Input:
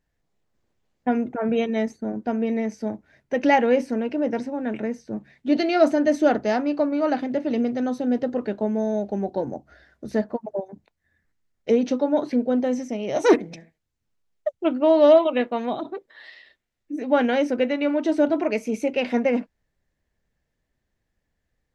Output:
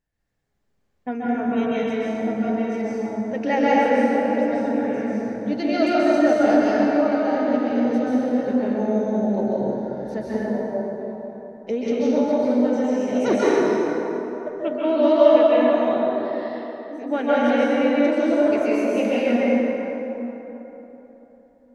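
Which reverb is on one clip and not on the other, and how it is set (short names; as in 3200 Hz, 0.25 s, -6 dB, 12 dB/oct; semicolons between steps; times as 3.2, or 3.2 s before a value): plate-style reverb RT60 3.6 s, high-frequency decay 0.5×, pre-delay 0.12 s, DRR -8.5 dB; gain -6.5 dB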